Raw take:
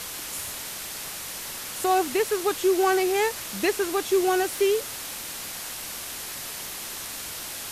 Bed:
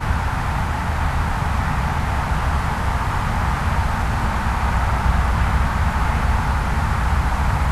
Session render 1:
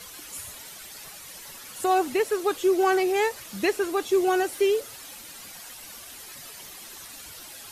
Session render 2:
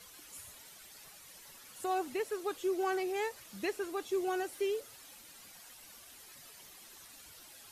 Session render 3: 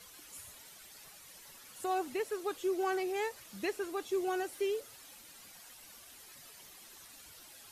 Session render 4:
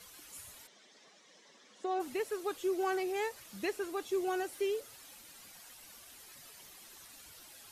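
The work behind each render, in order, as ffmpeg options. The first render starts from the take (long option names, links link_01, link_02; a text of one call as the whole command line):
ffmpeg -i in.wav -af "afftdn=noise_reduction=11:noise_floor=-36" out.wav
ffmpeg -i in.wav -af "volume=-11.5dB" out.wav
ffmpeg -i in.wav -af anull out.wav
ffmpeg -i in.wav -filter_complex "[0:a]asplit=3[link_01][link_02][link_03];[link_01]afade=type=out:start_time=0.66:duration=0.02[link_04];[link_02]highpass=frequency=210:width=0.5412,highpass=frequency=210:width=1.3066,equalizer=frequency=210:width_type=q:width=4:gain=4,equalizer=frequency=470:width_type=q:width=4:gain=3,equalizer=frequency=870:width_type=q:width=4:gain=-5,equalizer=frequency=1400:width_type=q:width=4:gain=-8,equalizer=frequency=2600:width_type=q:width=4:gain=-8,equalizer=frequency=4500:width_type=q:width=4:gain=-7,lowpass=frequency=5600:width=0.5412,lowpass=frequency=5600:width=1.3066,afade=type=in:start_time=0.66:duration=0.02,afade=type=out:start_time=1.99:duration=0.02[link_05];[link_03]afade=type=in:start_time=1.99:duration=0.02[link_06];[link_04][link_05][link_06]amix=inputs=3:normalize=0" out.wav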